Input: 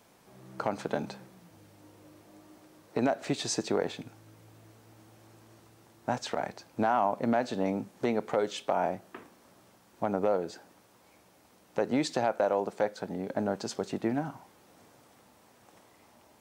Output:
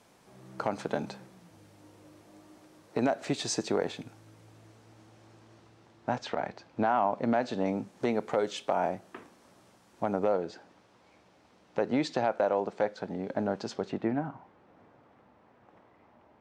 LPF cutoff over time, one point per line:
4.07 s 11000 Hz
6.34 s 4100 Hz
6.94 s 4100 Hz
8.06 s 10000 Hz
10.06 s 10000 Hz
10.49 s 4900 Hz
13.69 s 4900 Hz
14.29 s 1900 Hz

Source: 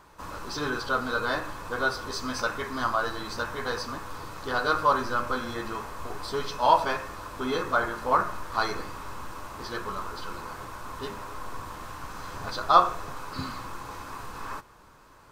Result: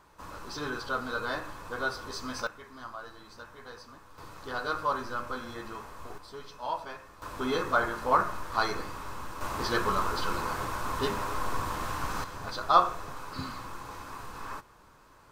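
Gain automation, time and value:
-5 dB
from 2.47 s -15.5 dB
from 4.18 s -7 dB
from 6.18 s -13.5 dB
from 7.22 s -1 dB
from 9.41 s +6 dB
from 12.24 s -3 dB

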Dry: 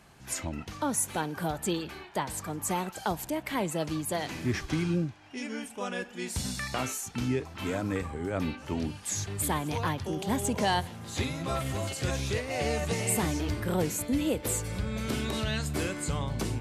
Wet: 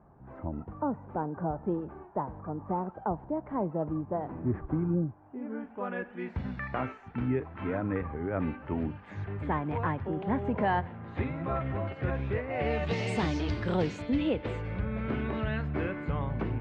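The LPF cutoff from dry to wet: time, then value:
LPF 24 dB/oct
5.39 s 1100 Hz
5.95 s 2000 Hz
12.5 s 2000 Hz
13.03 s 4700 Hz
13.7 s 4700 Hz
14.91 s 2200 Hz

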